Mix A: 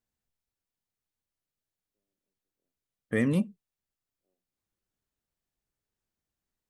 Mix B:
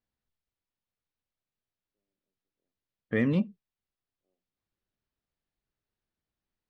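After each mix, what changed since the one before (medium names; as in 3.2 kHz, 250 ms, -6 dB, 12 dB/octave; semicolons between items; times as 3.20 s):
second voice: add low-pass 4.8 kHz 24 dB/octave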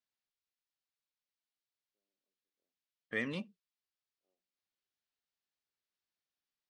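second voice -6.0 dB; master: add tilt EQ +4 dB/octave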